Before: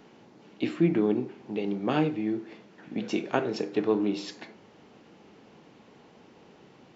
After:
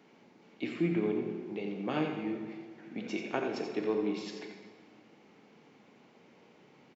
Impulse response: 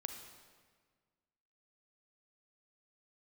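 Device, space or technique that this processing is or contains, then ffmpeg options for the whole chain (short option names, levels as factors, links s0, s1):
PA in a hall: -filter_complex "[0:a]highpass=120,equalizer=f=2200:t=o:w=0.24:g=7,aecho=1:1:87:0.398[s0];[1:a]atrim=start_sample=2205[s1];[s0][s1]afir=irnorm=-1:irlink=0,volume=0.596"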